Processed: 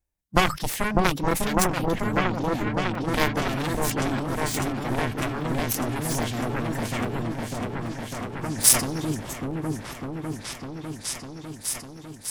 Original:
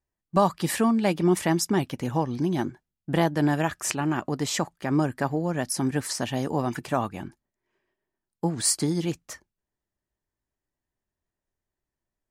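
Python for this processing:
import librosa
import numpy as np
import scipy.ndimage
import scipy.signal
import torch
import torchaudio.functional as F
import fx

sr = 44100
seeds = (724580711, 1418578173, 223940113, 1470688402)

y = fx.pitch_keep_formants(x, sr, semitones=-1.5)
y = fx.high_shelf(y, sr, hz=4100.0, db=8.0)
y = fx.cheby_harmonics(y, sr, harmonics=(7,), levels_db=(-13,), full_scale_db=-4.5)
y = fx.low_shelf(y, sr, hz=84.0, db=11.5)
y = fx.echo_opening(y, sr, ms=601, hz=750, octaves=1, feedback_pct=70, wet_db=0)
y = fx.formant_shift(y, sr, semitones=2)
y = fx.buffer_crackle(y, sr, first_s=0.49, period_s=0.82, block=128, kind='zero')
y = fx.sustainer(y, sr, db_per_s=140.0)
y = y * 10.0 ** (3.0 / 20.0)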